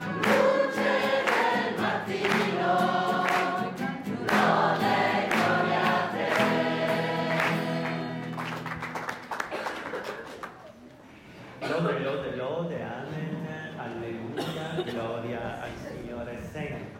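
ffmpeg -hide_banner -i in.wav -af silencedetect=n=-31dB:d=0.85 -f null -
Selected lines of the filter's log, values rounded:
silence_start: 10.45
silence_end: 11.62 | silence_duration: 1.17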